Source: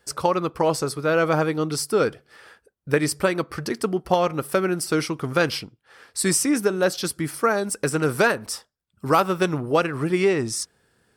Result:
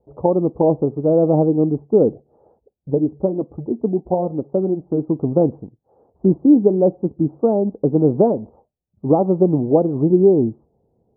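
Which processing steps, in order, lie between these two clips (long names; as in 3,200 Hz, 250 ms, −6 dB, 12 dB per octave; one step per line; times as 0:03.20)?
Butterworth low-pass 830 Hz 48 dB per octave
dynamic equaliser 250 Hz, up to +8 dB, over −36 dBFS, Q 1
0:02.90–0:05.08: flanger 1.5 Hz, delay 0.7 ms, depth 4.8 ms, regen −59%
level +3 dB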